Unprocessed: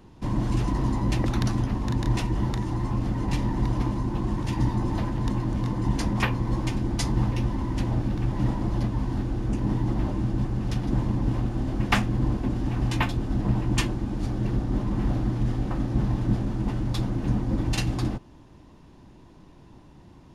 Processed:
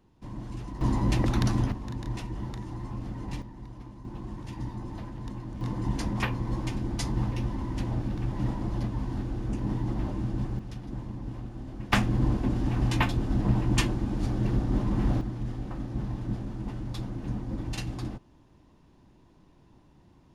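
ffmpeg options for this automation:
-af "asetnsamples=n=441:p=0,asendcmd='0.81 volume volume -0.5dB;1.72 volume volume -9.5dB;3.42 volume volume -18.5dB;4.05 volume volume -11.5dB;5.61 volume volume -4.5dB;10.59 volume volume -12dB;11.93 volume volume -0.5dB;15.21 volume volume -8dB',volume=-13dB"

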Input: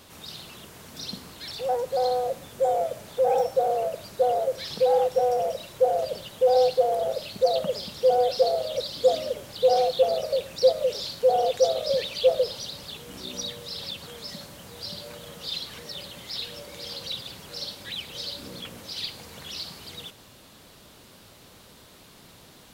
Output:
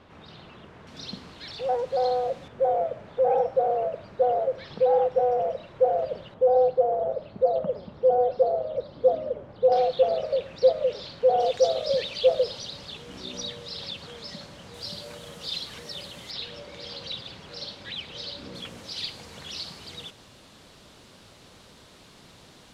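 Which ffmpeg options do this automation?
-af "asetnsamples=n=441:p=0,asendcmd='0.87 lowpass f 4100;2.48 lowpass f 2000;6.34 lowpass f 1100;9.72 lowpass f 2800;11.4 lowpass f 5500;14.74 lowpass f 9500;16.31 lowpass f 4400;18.55 lowpass f 7900',lowpass=2.1k"

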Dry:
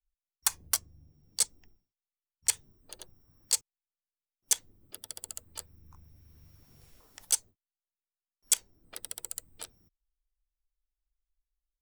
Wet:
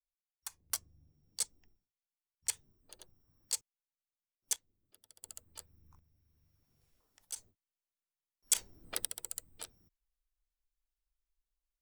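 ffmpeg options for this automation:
-af "asetnsamples=n=441:p=0,asendcmd='0.7 volume volume -8dB;4.56 volume volume -19dB;5.23 volume volume -8dB;5.99 volume volume -16dB;7.36 volume volume -4dB;8.55 volume volume 6dB;9.05 volume volume -3dB',volume=-17.5dB"

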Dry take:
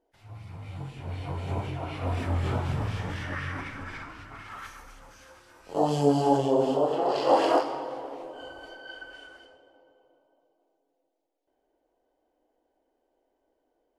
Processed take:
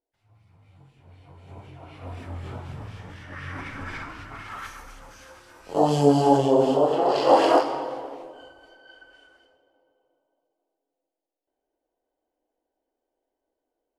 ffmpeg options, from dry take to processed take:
-af "volume=4.5dB,afade=t=in:st=1.36:d=0.7:silence=0.421697,afade=t=in:st=3.27:d=0.65:silence=0.237137,afade=t=out:st=7.82:d=0.73:silence=0.251189"

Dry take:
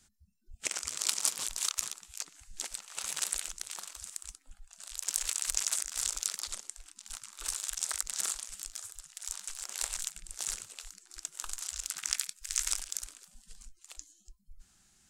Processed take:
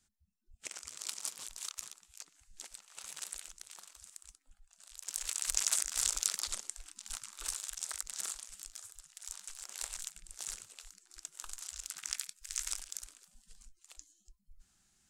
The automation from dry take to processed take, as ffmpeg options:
-af "volume=1dB,afade=t=in:st=5.02:d=0.73:silence=0.281838,afade=t=out:st=7.15:d=0.55:silence=0.446684"

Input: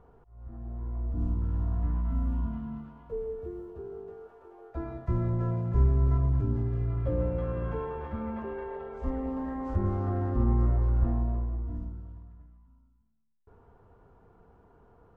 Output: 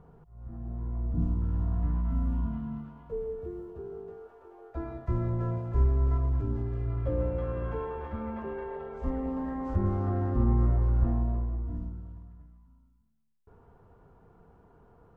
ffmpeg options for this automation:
-af "asetnsamples=n=441:p=0,asendcmd='1.24 equalizer g 4;4.18 equalizer g -5;5.58 equalizer g -14;6.86 equalizer g -6;8.46 equalizer g 4.5',equalizer=f=160:t=o:w=0.56:g=13.5"

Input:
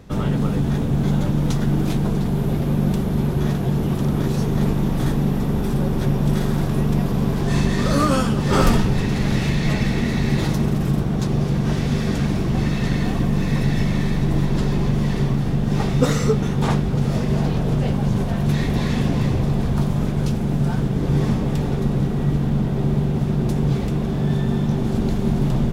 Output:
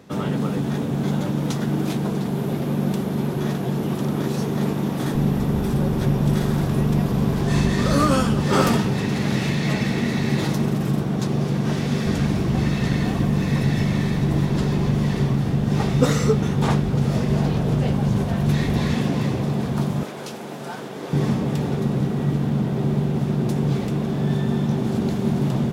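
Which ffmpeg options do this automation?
-af "asetnsamples=n=441:p=0,asendcmd='5.15 highpass f 45;8.46 highpass f 130;12.06 highpass f 58;18.94 highpass f 140;20.03 highpass f 460;21.13 highpass f 120',highpass=170"

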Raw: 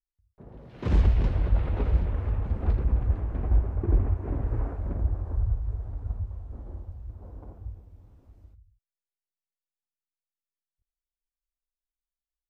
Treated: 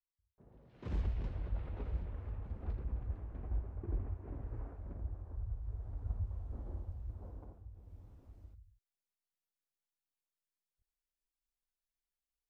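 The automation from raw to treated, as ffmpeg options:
-af "volume=8dB,afade=t=in:st=5.48:d=0.98:silence=0.281838,afade=t=out:st=7.22:d=0.48:silence=0.281838,afade=t=in:st=7.7:d=0.22:silence=0.251189"

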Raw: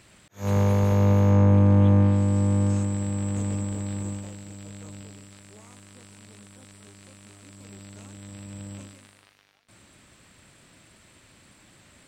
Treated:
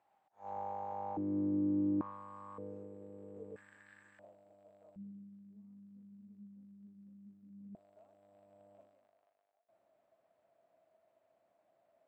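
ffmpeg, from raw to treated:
-af "asetnsamples=n=441:p=0,asendcmd='1.17 bandpass f 310;2.01 bandpass f 1100;2.58 bandpass f 440;3.56 bandpass f 1700;4.19 bandpass f 650;4.96 bandpass f 200;7.75 bandpass f 660',bandpass=f=800:t=q:w=12:csg=0"

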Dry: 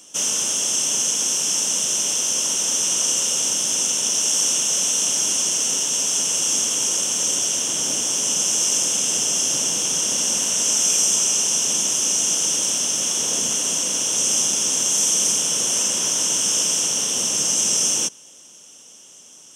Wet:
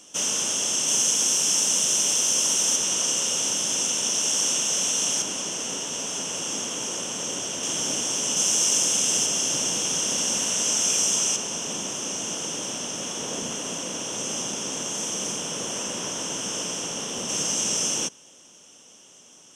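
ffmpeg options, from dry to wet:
-af "asetnsamples=n=441:p=0,asendcmd='0.88 lowpass f 12000;2.76 lowpass f 4700;5.22 lowpass f 2000;7.63 lowpass f 4100;8.37 lowpass f 8200;9.26 lowpass f 4500;11.36 lowpass f 1700;17.29 lowpass f 3400',lowpass=f=5.1k:p=1"

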